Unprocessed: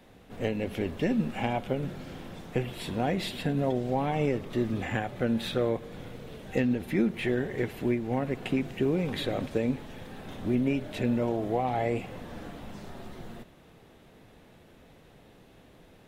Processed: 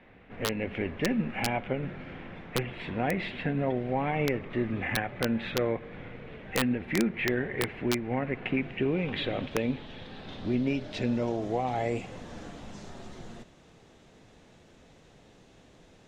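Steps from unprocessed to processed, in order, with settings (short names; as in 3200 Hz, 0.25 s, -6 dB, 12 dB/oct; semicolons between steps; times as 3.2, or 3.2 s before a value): low-pass sweep 2200 Hz -> 6800 Hz, 8.42–11.69; wrapped overs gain 14.5 dB; gain -1.5 dB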